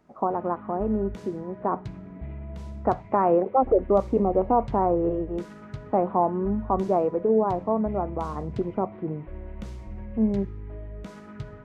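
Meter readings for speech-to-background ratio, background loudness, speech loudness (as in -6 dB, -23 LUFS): 15.0 dB, -40.5 LUFS, -25.5 LUFS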